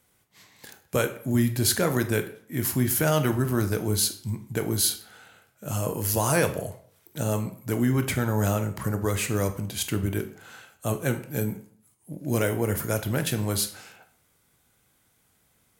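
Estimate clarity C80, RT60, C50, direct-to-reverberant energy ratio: 16.0 dB, 0.55 s, 12.0 dB, 7.0 dB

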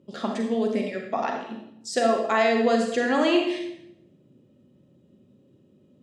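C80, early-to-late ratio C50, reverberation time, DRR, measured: 7.0 dB, 3.5 dB, 0.80 s, 1.5 dB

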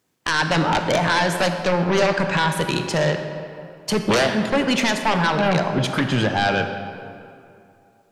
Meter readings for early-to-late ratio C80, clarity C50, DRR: 7.5 dB, 7.0 dB, 6.0 dB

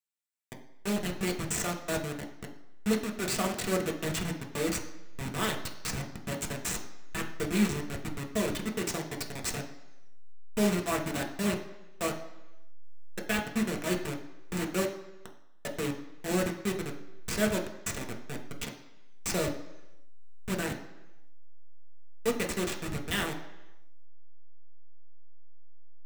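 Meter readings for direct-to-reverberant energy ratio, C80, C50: 1.0 dB, 12.5 dB, 10.0 dB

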